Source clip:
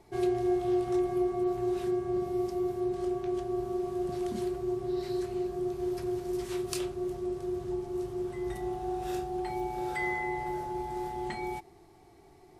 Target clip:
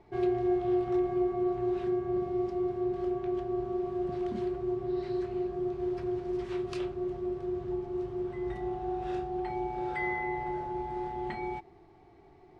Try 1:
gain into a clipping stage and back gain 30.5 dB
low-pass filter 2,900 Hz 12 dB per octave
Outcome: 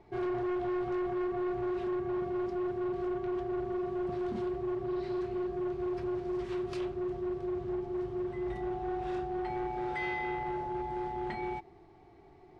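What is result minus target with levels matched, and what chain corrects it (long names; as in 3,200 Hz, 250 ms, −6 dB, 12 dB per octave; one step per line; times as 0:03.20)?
gain into a clipping stage and back: distortion +32 dB
gain into a clipping stage and back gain 19 dB
low-pass filter 2,900 Hz 12 dB per octave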